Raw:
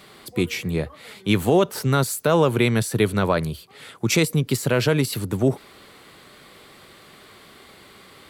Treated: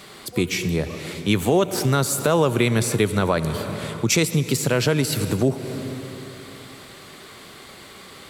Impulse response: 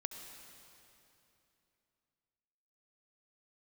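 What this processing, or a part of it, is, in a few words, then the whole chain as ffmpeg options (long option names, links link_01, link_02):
ducked reverb: -filter_complex "[0:a]equalizer=frequency=6700:width=1.4:gain=5,asplit=3[link_01][link_02][link_03];[1:a]atrim=start_sample=2205[link_04];[link_02][link_04]afir=irnorm=-1:irlink=0[link_05];[link_03]apad=whole_len=365676[link_06];[link_05][link_06]sidechaincompress=threshold=-26dB:ratio=8:attack=25:release=234,volume=5.5dB[link_07];[link_01][link_07]amix=inputs=2:normalize=0,volume=-3.5dB"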